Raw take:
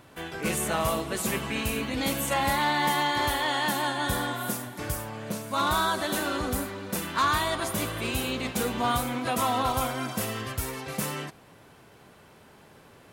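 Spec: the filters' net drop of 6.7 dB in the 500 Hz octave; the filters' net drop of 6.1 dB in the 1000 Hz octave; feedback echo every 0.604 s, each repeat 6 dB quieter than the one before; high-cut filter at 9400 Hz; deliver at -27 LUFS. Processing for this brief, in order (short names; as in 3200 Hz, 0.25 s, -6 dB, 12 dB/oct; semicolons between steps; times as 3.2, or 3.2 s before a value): LPF 9400 Hz; bell 500 Hz -7 dB; bell 1000 Hz -5.5 dB; feedback echo 0.604 s, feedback 50%, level -6 dB; gain +3 dB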